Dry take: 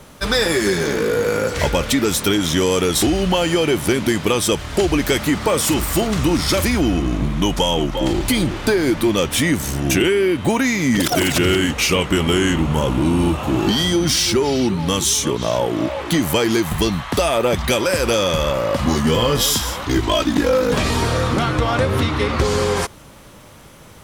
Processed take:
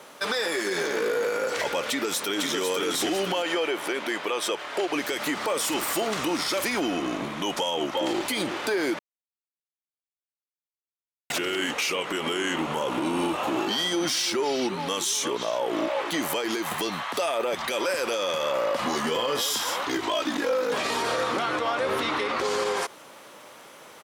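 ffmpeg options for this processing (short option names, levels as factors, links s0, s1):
-filter_complex "[0:a]asplit=2[s0][s1];[s1]afade=t=in:st=1.86:d=0.01,afade=t=out:st=2.59:d=0.01,aecho=0:1:500|1000|1500|2000:0.668344|0.200503|0.060151|0.0180453[s2];[s0][s2]amix=inputs=2:normalize=0,asettb=1/sr,asplit=3[s3][s4][s5];[s3]atrim=end=3.424[s6];[s4]atrim=start=3.42:end=4.93,asetpts=PTS-STARTPTS,afade=t=in:d=0.004:c=qsin,afade=t=out:st=1.506:d=0.004:c=qsin,bass=f=250:g=-12,treble=f=4000:g=-8[s7];[s5]atrim=start=4.926[s8];[s6][s7]acrossfade=d=0.004:c1=hsin:c2=qsin[s9];[s9][s8]acrossfade=d=0.004:c1=qsin:c2=hsin,asplit=3[s10][s11][s12];[s10]atrim=end=8.99,asetpts=PTS-STARTPTS,afade=t=out:st=8.986:d=0.004:c=hsin[s13];[s11]atrim=start=8.99:end=11.3,asetpts=PTS-STARTPTS,volume=0[s14];[s12]atrim=start=11.3,asetpts=PTS-STARTPTS,afade=t=in:d=0.004:c=hsin[s15];[s13][s14][s15]concat=n=3:v=0:a=1,highpass=430,highshelf=f=5000:g=-5,alimiter=limit=0.133:level=0:latency=1:release=66"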